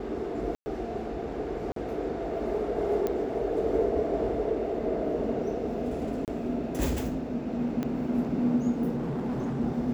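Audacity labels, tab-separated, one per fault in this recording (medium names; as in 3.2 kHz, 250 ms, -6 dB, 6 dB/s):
0.550000	0.660000	dropout 110 ms
1.720000	1.760000	dropout 43 ms
3.070000	3.070000	pop -17 dBFS
6.250000	6.280000	dropout 28 ms
7.830000	7.830000	pop -19 dBFS
8.970000	9.610000	clipped -27.5 dBFS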